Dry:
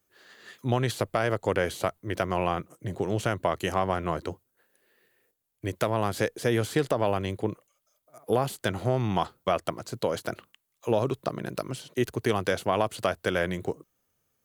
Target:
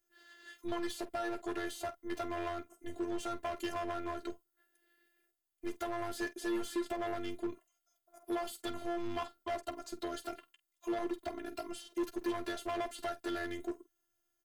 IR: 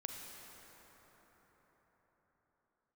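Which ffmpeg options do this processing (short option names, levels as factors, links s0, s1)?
-af "afftfilt=real='hypot(re,im)*cos(PI*b)':imag='0':win_size=512:overlap=0.75,volume=21.1,asoftclip=hard,volume=0.0473,aecho=1:1:11|48:0.355|0.168,volume=0.631"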